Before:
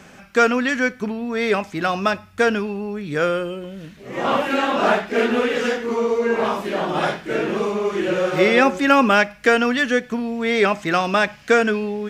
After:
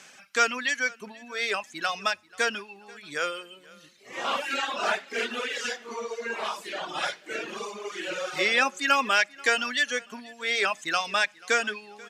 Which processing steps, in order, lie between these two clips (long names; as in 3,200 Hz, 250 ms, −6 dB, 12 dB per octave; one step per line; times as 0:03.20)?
high-pass filter 73 Hz
reverb reduction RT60 1.9 s
low-pass filter 7,800 Hz 12 dB per octave
spectral tilt +4.5 dB per octave
on a send: repeating echo 486 ms, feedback 36%, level −23.5 dB
on the sum: level −7.5 dB